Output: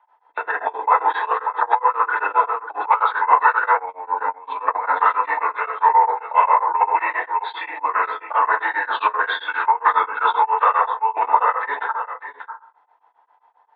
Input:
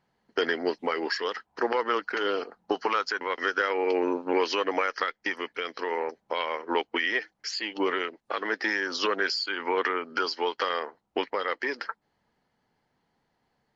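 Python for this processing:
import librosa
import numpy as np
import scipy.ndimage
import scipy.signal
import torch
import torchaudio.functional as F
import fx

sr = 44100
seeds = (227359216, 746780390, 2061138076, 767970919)

p1 = fx.freq_compress(x, sr, knee_hz=1900.0, ratio=1.5)
p2 = scipy.signal.sosfilt(scipy.signal.butter(2, 5700.0, 'lowpass', fs=sr, output='sos'), p1)
p3 = fx.high_shelf(p2, sr, hz=3300.0, db=-11.5)
p4 = fx.level_steps(p3, sr, step_db=13)
p5 = p3 + (p4 * 10.0 ** (-1.0 / 20.0))
p6 = fx.echo_multitap(p5, sr, ms=(84, 591), db=(-12.5, -12.0))
p7 = fx.rev_fdn(p6, sr, rt60_s=0.5, lf_ratio=1.55, hf_ratio=0.35, size_ms=20.0, drr_db=-4.5)
p8 = fx.over_compress(p7, sr, threshold_db=-18.0, ratio=-0.5)
p9 = scipy.signal.sosfilt(scipy.signal.butter(4, 610.0, 'highpass', fs=sr, output='sos'), p8)
p10 = fx.peak_eq(p9, sr, hz=970.0, db=15.0, octaves=0.69)
p11 = p10 * np.abs(np.cos(np.pi * 7.5 * np.arange(len(p10)) / sr))
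y = p11 * 10.0 ** (-1.0 / 20.0)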